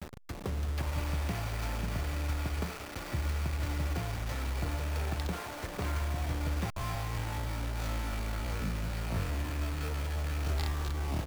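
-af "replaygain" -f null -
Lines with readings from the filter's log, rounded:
track_gain = +21.4 dB
track_peak = 0.069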